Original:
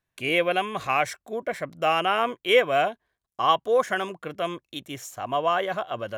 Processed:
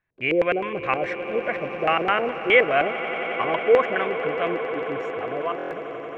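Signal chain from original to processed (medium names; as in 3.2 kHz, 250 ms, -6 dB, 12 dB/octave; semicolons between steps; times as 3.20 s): fade out at the end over 1.40 s; LFO low-pass square 4.8 Hz 440–2100 Hz; on a send: echo with a slow build-up 90 ms, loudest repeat 8, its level -17 dB; on the sum: buffer glitch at 5.57 s, samples 1024, times 5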